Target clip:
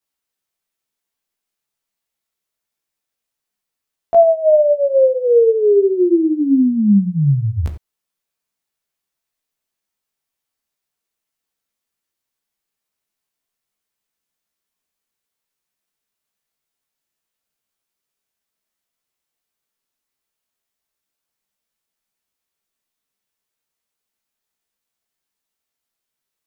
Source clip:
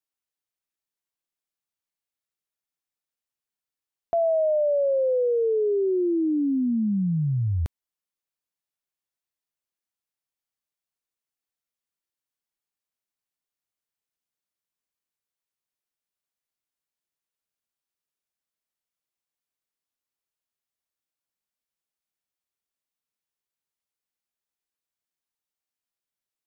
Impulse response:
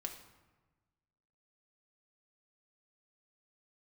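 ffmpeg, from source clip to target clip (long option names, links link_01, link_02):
-filter_complex "[0:a]asplit=2[link_01][link_02];[1:a]atrim=start_sample=2205,atrim=end_sample=4410,adelay=15[link_03];[link_02][link_03]afir=irnorm=-1:irlink=0,volume=5.5dB[link_04];[link_01][link_04]amix=inputs=2:normalize=0,volume=4dB"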